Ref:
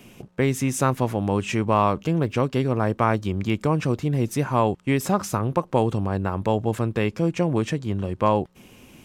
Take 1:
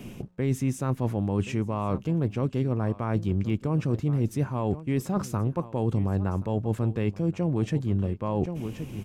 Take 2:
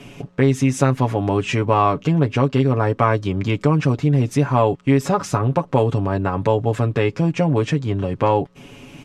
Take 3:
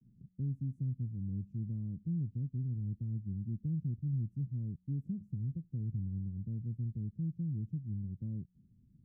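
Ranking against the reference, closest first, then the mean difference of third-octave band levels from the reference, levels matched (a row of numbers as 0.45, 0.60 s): 2, 1, 3; 3.0, 5.0, 18.0 dB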